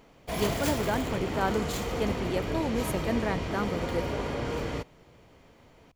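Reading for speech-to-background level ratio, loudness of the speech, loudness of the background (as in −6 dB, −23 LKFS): 0.0 dB, −32.5 LKFS, −32.5 LKFS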